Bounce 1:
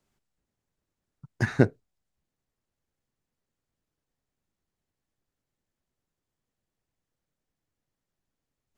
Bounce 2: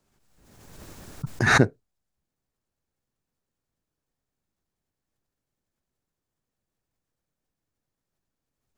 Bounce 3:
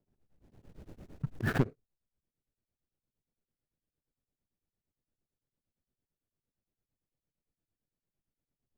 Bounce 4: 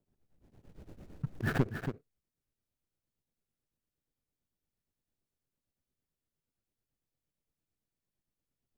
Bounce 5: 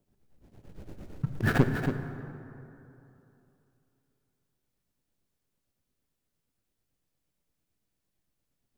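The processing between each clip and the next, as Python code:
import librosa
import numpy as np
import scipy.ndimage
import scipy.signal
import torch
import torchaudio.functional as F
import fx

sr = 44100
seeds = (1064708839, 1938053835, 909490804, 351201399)

y1 = fx.peak_eq(x, sr, hz=3000.0, db=-2.5, octaves=0.77)
y1 = fx.notch(y1, sr, hz=2000.0, q=24.0)
y1 = fx.pre_swell(y1, sr, db_per_s=37.0)
y2 = scipy.signal.medfilt(y1, 41)
y2 = 10.0 ** (-14.0 / 20.0) * np.tanh(y2 / 10.0 ** (-14.0 / 20.0))
y2 = y2 * np.abs(np.cos(np.pi * 8.8 * np.arange(len(y2)) / sr))
y2 = y2 * librosa.db_to_amplitude(-2.0)
y3 = y2 + 10.0 ** (-8.0 / 20.0) * np.pad(y2, (int(280 * sr / 1000.0), 0))[:len(y2)]
y3 = y3 * librosa.db_to_amplitude(-1.0)
y4 = fx.rev_plate(y3, sr, seeds[0], rt60_s=3.0, hf_ratio=0.45, predelay_ms=0, drr_db=8.0)
y4 = y4 * librosa.db_to_amplitude(6.0)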